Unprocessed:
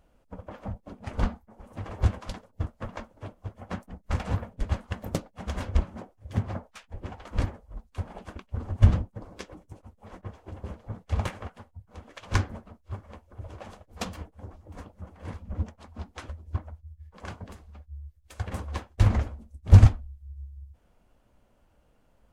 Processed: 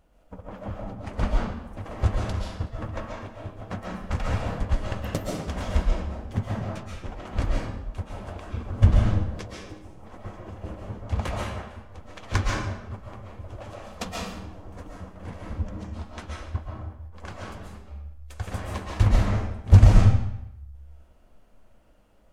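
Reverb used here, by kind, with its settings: digital reverb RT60 0.84 s, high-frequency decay 0.9×, pre-delay 95 ms, DRR -3 dB

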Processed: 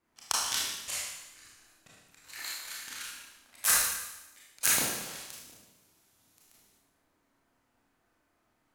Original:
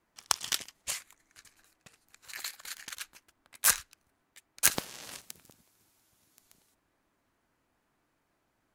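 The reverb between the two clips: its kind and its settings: Schroeder reverb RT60 1 s, combs from 25 ms, DRR -6 dB; gain -5 dB

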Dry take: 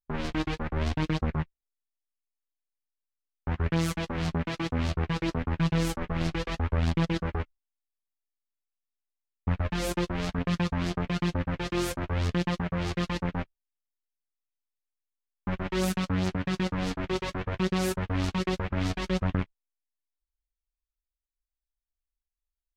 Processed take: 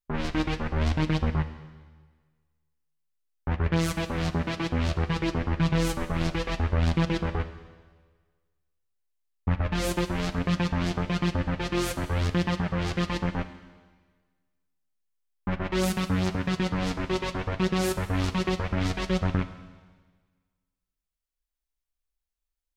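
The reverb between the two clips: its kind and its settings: Schroeder reverb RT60 1.5 s, combs from 26 ms, DRR 11 dB; gain +2 dB

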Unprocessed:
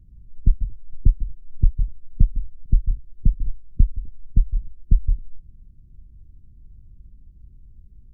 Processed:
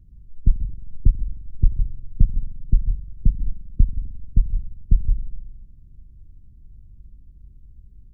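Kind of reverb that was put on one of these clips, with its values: spring tank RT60 1.7 s, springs 44 ms, DRR 12 dB

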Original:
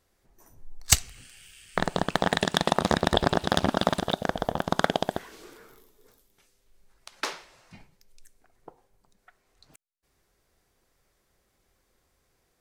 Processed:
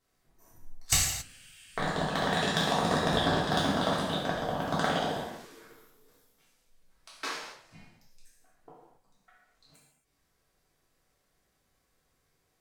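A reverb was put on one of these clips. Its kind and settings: non-linear reverb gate 0.3 s falling, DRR -7.5 dB; gain -10.5 dB

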